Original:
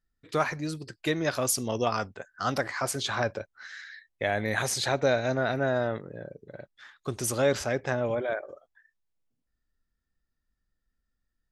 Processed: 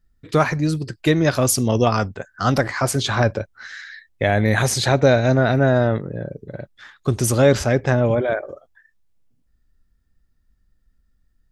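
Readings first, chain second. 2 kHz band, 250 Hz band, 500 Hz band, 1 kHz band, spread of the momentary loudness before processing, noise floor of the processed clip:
+7.5 dB, +12.5 dB, +9.0 dB, +8.0 dB, 17 LU, -64 dBFS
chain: low shelf 260 Hz +11 dB; gain +7 dB

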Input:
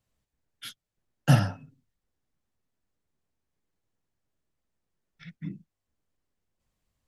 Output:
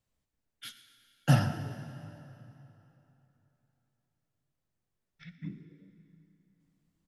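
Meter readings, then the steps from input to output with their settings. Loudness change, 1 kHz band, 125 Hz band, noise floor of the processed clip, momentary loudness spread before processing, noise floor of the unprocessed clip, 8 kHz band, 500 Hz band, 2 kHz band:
-6.5 dB, -2.5 dB, -3.0 dB, -84 dBFS, 20 LU, -85 dBFS, -3.0 dB, -3.0 dB, -3.0 dB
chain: frequency-shifting echo 0.119 s, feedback 43%, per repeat +94 Hz, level -19.5 dB; plate-style reverb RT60 3.3 s, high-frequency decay 0.75×, DRR 9.5 dB; gain -3.5 dB

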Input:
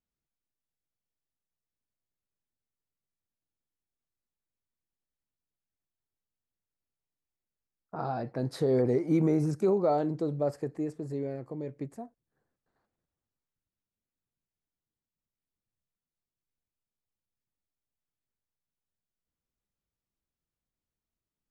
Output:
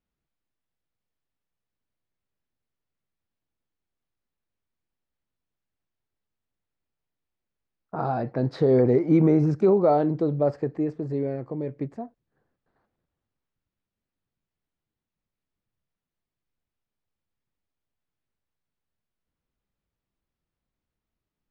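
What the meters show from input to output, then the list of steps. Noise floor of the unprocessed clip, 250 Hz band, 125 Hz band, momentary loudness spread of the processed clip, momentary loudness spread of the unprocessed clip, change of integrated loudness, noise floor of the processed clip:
under -85 dBFS, +6.5 dB, +7.0 dB, 15 LU, 15 LU, +6.5 dB, under -85 dBFS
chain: air absorption 200 m; gain +7 dB

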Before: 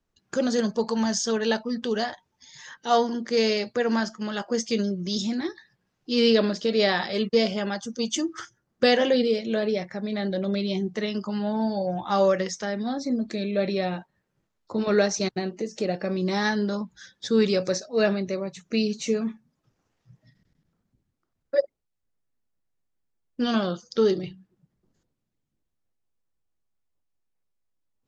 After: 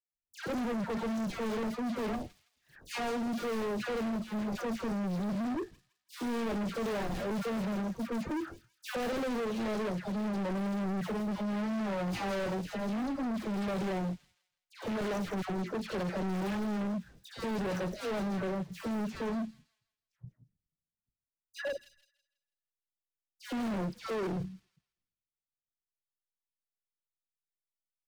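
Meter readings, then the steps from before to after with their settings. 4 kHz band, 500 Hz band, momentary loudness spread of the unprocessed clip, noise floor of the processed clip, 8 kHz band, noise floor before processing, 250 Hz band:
-15.5 dB, -12.0 dB, 10 LU, under -85 dBFS, -15.0 dB, -78 dBFS, -7.0 dB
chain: median filter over 41 samples; expander -49 dBFS; low shelf 130 Hz +10 dB; in parallel at +0.5 dB: negative-ratio compressor -24 dBFS, ratio -0.5; on the sum: dispersion lows, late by 0.138 s, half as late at 1300 Hz; overloaded stage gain 26 dB; on a send: thin delay 0.164 s, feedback 32%, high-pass 4400 Hz, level -5 dB; on the sum: gain -6 dB

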